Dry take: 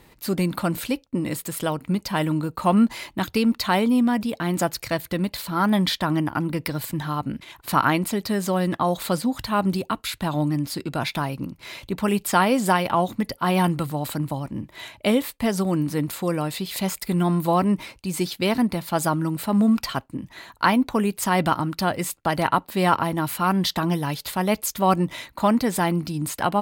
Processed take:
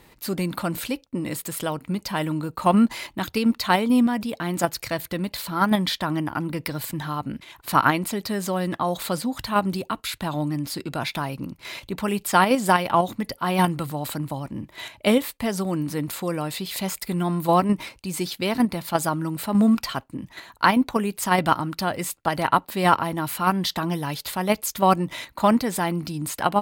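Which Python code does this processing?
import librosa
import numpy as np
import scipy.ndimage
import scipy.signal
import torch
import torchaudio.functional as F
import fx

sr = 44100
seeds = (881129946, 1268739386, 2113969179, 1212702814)

p1 = fx.low_shelf(x, sr, hz=370.0, db=-2.5)
p2 = fx.level_steps(p1, sr, step_db=20)
p3 = p1 + F.gain(torch.from_numpy(p2), -0.5).numpy()
y = F.gain(torch.from_numpy(p3), -2.5).numpy()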